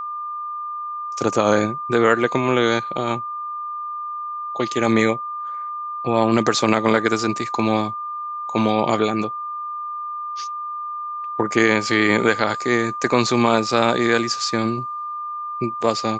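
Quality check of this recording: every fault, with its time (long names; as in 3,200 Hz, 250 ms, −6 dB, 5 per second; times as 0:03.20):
whistle 1,200 Hz −26 dBFS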